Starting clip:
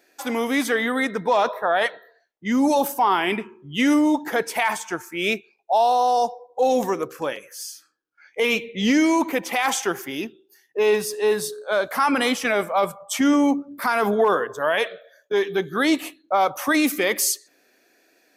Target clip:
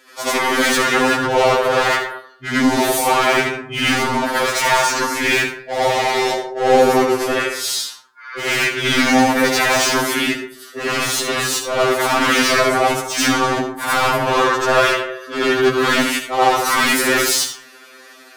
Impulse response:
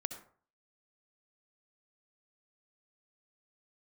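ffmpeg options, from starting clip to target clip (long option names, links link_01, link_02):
-filter_complex "[0:a]asplit=4[link_01][link_02][link_03][link_04];[link_02]asetrate=29433,aresample=44100,atempo=1.49831,volume=-5dB[link_05];[link_03]asetrate=33038,aresample=44100,atempo=1.33484,volume=-9dB[link_06];[link_04]asetrate=35002,aresample=44100,atempo=1.25992,volume=-2dB[link_07];[link_01][link_05][link_06][link_07]amix=inputs=4:normalize=0,asplit=2[link_08][link_09];[link_09]highpass=frequency=720:poles=1,volume=29dB,asoftclip=type=tanh:threshold=-2.5dB[link_10];[link_08][link_10]amix=inputs=2:normalize=0,lowpass=frequency=7200:poles=1,volume=-6dB,asplit=2[link_11][link_12];[1:a]atrim=start_sample=2205,adelay=85[link_13];[link_12][link_13]afir=irnorm=-1:irlink=0,volume=7dB[link_14];[link_11][link_14]amix=inputs=2:normalize=0,afftfilt=real='re*2.45*eq(mod(b,6),0)':imag='im*2.45*eq(mod(b,6),0)':win_size=2048:overlap=0.75,volume=-11dB"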